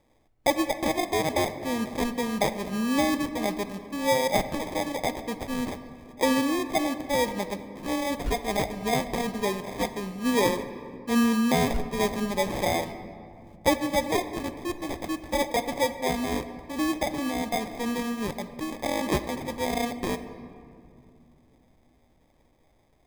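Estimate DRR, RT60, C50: 10.0 dB, 2.5 s, 11.5 dB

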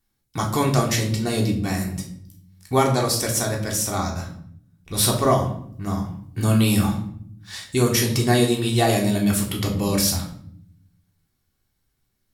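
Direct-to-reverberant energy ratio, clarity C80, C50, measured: −1.0 dB, 11.5 dB, 8.0 dB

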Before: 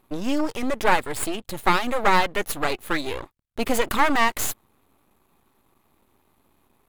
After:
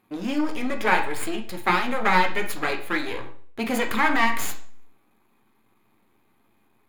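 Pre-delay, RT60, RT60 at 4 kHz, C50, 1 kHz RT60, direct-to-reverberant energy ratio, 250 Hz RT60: 7 ms, 0.50 s, 0.45 s, 10.5 dB, 0.50 s, 3.0 dB, 0.55 s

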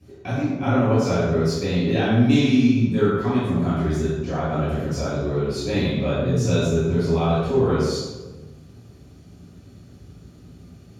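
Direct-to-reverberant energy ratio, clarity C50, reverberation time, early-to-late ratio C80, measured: −13.0 dB, −3.0 dB, 1.2 s, 0.0 dB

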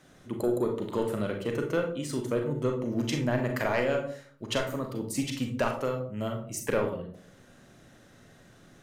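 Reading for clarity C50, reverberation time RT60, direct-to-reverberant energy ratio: 7.0 dB, non-exponential decay, 2.5 dB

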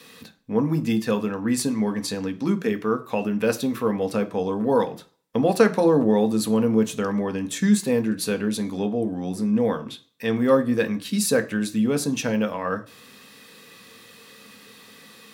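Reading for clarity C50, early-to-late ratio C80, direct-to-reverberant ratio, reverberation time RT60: 18.0 dB, 22.5 dB, 6.5 dB, 0.45 s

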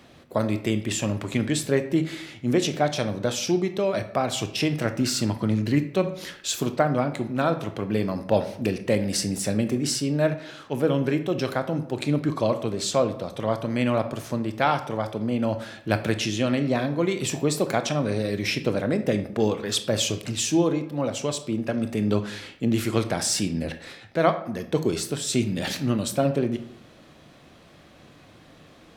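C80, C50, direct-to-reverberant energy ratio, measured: 15.5 dB, 12.0 dB, 8.5 dB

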